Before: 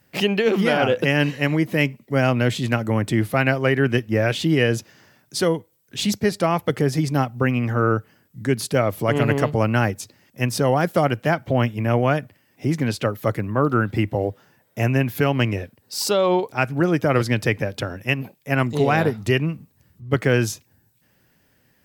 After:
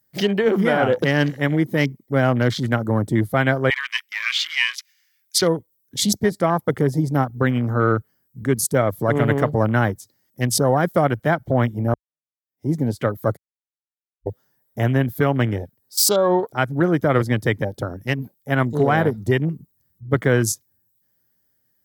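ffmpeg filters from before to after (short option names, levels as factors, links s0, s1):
-filter_complex "[0:a]asettb=1/sr,asplit=3[s0][s1][s2];[s0]atrim=end=3.704[s3];[s1]atrim=start=3.7:end=5.42,asetpts=PTS-STARTPTS,afade=t=in:d=0.004:c=qsin,afade=t=out:st=1.716:d=0.004:c=qsin,highpass=f=2400:t=q:w=5.4[s4];[s2]atrim=start=5.416[s5];[s3][s4]acrossfade=d=0.004:c1=hsin:c2=qsin[s6];[s6][s5]acrossfade=d=0.004:c1=qsin:c2=hsin,asplit=4[s7][s8][s9][s10];[s7]atrim=end=11.94,asetpts=PTS-STARTPTS,afade=t=out:st=11.936:d=0.004:c=hsin[s11];[s8]atrim=start=11.94:end=13.37,asetpts=PTS-STARTPTS,afade=t=in:d=0.76:c=exp,afade=t=out:st=1.426:d=0.004:c=hsin[s12];[s9]atrim=start=13.37:end=14.26,asetpts=PTS-STARTPTS,volume=0[s13];[s10]atrim=start=14.26,asetpts=PTS-STARTPTS,afade=t=in:d=0.004:c=hsin[s14];[s11][s12][s13][s14]concat=n=4:v=0:a=1,aemphasis=mode=production:type=50kf,afwtdn=0.0398,equalizer=f=2600:t=o:w=0.27:g=-15,volume=1.12"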